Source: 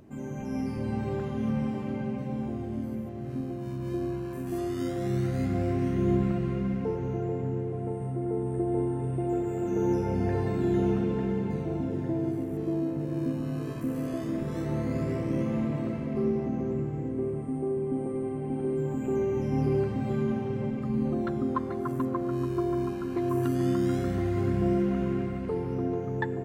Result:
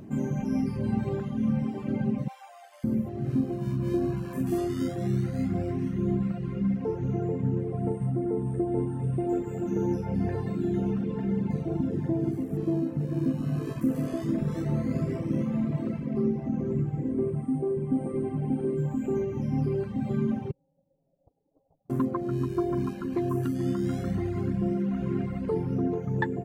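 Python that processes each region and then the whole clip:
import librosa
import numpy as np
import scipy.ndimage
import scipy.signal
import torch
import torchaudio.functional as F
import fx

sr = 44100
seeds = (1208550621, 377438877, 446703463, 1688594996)

y = fx.chain(x, sr, fx.steep_highpass(hz=610.0, slope=48),
    fx.tilt_eq(slope=1.5), at=(2.28, 2.84))
y = fx.chain(y, sr, fx.steep_highpass(hz=2300.0, slope=96),
    fx.freq_invert(carrier_hz=2900), at=(20.51, 21.9))
y = fx.dereverb_blind(y, sr, rt60_s=1.2)
y = fx.peak_eq(y, sr, hz=180.0, db=8.0, octaves=1.1)
y = fx.rider(y, sr, range_db=10, speed_s=0.5)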